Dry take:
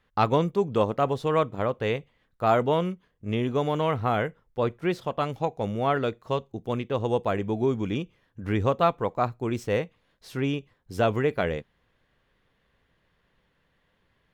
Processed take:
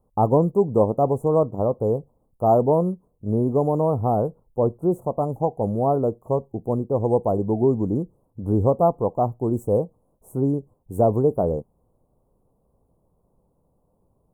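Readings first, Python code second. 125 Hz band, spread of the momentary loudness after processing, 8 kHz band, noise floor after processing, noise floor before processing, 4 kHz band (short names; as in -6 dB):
+5.5 dB, 8 LU, n/a, -68 dBFS, -71 dBFS, under -40 dB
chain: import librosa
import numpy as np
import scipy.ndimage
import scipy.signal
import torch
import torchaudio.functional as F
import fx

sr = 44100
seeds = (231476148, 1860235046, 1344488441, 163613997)

y = scipy.signal.sosfilt(scipy.signal.cheby2(4, 50, [1700.0, 4900.0], 'bandstop', fs=sr, output='sos'), x)
y = y * librosa.db_to_amplitude(5.5)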